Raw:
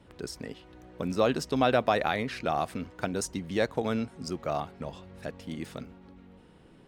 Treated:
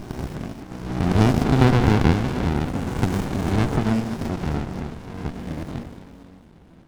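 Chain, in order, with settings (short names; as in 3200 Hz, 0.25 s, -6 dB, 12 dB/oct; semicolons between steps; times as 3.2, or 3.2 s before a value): spectral swells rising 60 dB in 1.51 s; split-band echo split 640 Hz, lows 0.112 s, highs 0.257 s, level -7 dB; running maximum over 65 samples; gain +4.5 dB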